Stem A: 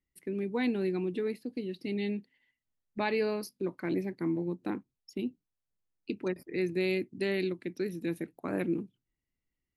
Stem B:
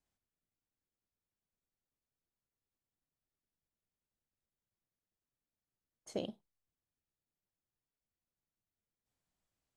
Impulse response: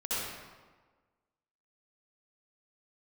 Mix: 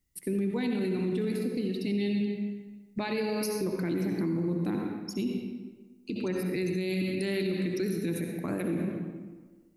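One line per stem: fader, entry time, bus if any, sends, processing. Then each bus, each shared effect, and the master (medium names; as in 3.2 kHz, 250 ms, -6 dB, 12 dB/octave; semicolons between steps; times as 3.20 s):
+1.5 dB, 0.00 s, send -8 dB, tone controls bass +7 dB, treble +10 dB
-20.0 dB, 0.00 s, no send, none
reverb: on, RT60 1.4 s, pre-delay 58 ms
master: peak limiter -22.5 dBFS, peak gain reduction 11 dB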